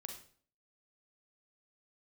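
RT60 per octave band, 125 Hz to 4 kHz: 0.55, 0.55, 0.50, 0.45, 0.45, 0.40 s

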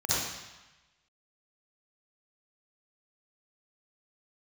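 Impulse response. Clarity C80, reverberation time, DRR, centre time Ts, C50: -2.0 dB, 1.1 s, -10.0 dB, 0.114 s, -9.0 dB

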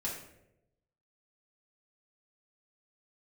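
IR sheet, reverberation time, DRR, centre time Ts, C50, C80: 0.85 s, -5.5 dB, 38 ms, 4.5 dB, 7.5 dB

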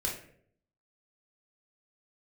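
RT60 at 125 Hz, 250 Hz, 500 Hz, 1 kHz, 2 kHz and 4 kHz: 0.85, 0.75, 0.70, 0.50, 0.55, 0.40 s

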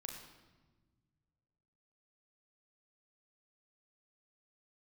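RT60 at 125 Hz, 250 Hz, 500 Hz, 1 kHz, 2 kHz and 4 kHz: 2.6, 2.1, 1.5, 1.2, 1.1, 0.95 s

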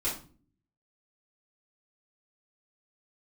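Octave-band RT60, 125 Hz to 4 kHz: 0.85, 0.75, 0.45, 0.35, 0.30, 0.30 s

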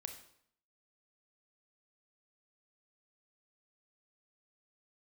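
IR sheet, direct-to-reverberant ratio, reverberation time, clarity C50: 5.5 dB, 0.65 s, 8.0 dB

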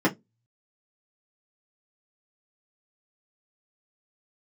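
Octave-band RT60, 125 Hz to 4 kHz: 0.30, 0.25, 0.20, 0.10, 0.15, 0.15 s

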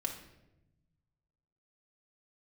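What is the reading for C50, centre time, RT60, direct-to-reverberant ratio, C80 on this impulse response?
7.5 dB, 19 ms, 0.95 s, 0.0 dB, 11.0 dB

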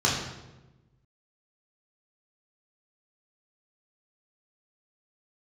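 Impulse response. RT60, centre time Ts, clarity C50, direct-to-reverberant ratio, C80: 1.1 s, 54 ms, 2.5 dB, -5.0 dB, 5.0 dB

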